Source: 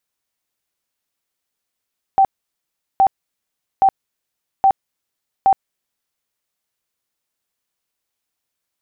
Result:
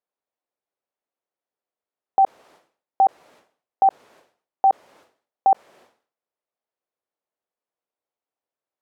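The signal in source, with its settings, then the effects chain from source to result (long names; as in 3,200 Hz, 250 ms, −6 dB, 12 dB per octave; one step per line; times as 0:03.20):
tone bursts 777 Hz, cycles 53, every 0.82 s, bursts 5, −8.5 dBFS
resonant band-pass 570 Hz, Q 1.2
level that may fall only so fast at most 130 dB per second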